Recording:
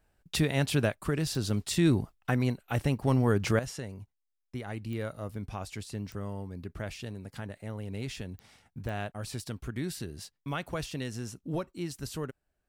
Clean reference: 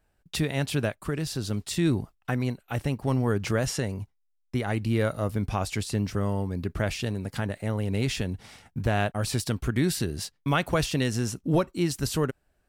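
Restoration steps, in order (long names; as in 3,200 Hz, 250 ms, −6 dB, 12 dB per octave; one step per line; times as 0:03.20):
click removal
level correction +10 dB, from 0:03.59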